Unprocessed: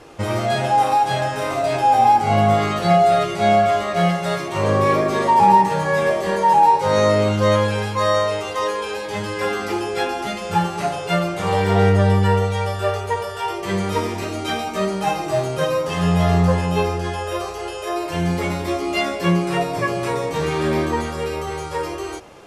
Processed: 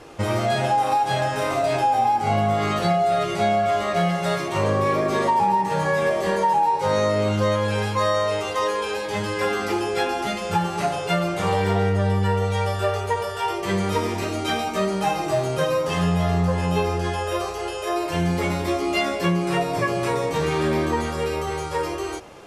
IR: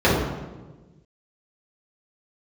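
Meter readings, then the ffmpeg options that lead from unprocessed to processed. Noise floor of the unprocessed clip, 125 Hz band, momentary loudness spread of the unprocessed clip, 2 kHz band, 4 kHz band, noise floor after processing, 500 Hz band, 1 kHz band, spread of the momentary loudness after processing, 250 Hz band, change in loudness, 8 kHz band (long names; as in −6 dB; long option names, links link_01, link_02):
−29 dBFS, −3.5 dB, 11 LU, −2.0 dB, −1.5 dB, −29 dBFS, −2.5 dB, −4.0 dB, 6 LU, −3.0 dB, −3.5 dB, −1.5 dB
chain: -af "acompressor=threshold=-17dB:ratio=6"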